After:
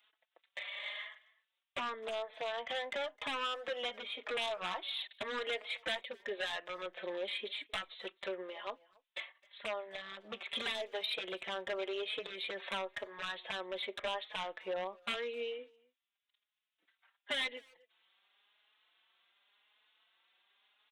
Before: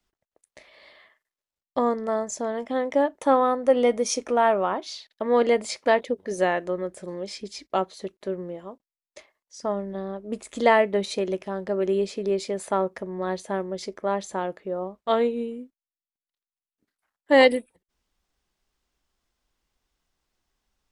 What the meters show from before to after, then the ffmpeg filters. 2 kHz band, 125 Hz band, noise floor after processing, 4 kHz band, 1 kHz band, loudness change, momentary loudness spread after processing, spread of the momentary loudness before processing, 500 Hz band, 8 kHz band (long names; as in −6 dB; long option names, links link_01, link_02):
−8.0 dB, below −20 dB, below −85 dBFS, −1.5 dB, −16.0 dB, −14.5 dB, 9 LU, 13 LU, −17.5 dB, −21.0 dB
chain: -filter_complex "[0:a]highpass=630,acompressor=threshold=-40dB:ratio=4,aresample=8000,aeval=exprs='0.0158*(abs(mod(val(0)/0.0158+3,4)-2)-1)':channel_layout=same,aresample=44100,crystalizer=i=9.5:c=0,asoftclip=type=tanh:threshold=-29dB,asplit=2[link_01][link_02];[link_02]adelay=260,highpass=300,lowpass=3400,asoftclip=type=hard:threshold=-38.5dB,volume=-23dB[link_03];[link_01][link_03]amix=inputs=2:normalize=0,asplit=2[link_04][link_05];[link_05]adelay=4.3,afreqshift=0.91[link_06];[link_04][link_06]amix=inputs=2:normalize=1,volume=4dB"